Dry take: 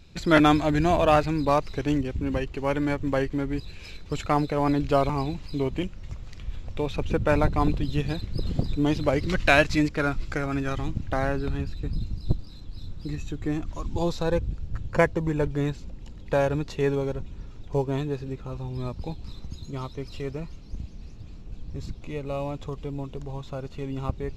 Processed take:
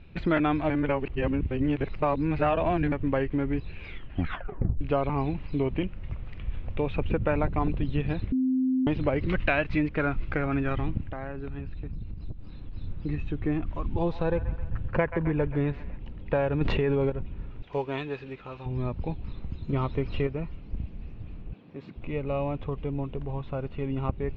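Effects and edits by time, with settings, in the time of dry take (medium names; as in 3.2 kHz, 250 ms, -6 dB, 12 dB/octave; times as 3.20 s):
0.70–2.92 s: reverse
3.82 s: tape stop 0.99 s
8.32–8.87 s: bleep 259 Hz -22.5 dBFS
11.01–12.74 s: compression 8:1, threshold -33 dBFS
13.83–15.98 s: feedback echo behind a band-pass 131 ms, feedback 52%, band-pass 1.4 kHz, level -12.5 dB
16.61–17.10 s: level flattener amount 100%
17.62–18.66 s: tilt EQ +4 dB/octave
19.69–20.27 s: gain +6.5 dB
21.53–21.96 s: Bessel high-pass 250 Hz, order 4
whole clip: Chebyshev low-pass 2.7 kHz, order 3; compression 4:1, threshold -24 dBFS; trim +2 dB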